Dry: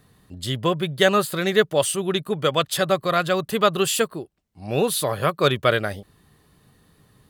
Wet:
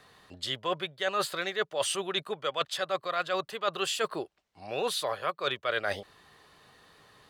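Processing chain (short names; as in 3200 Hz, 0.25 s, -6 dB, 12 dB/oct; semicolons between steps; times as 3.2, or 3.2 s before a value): three-band isolator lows -17 dB, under 460 Hz, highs -15 dB, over 6700 Hz; reverse; compressor 6:1, threshold -34 dBFS, peak gain reduction 19.5 dB; reverse; gain +6 dB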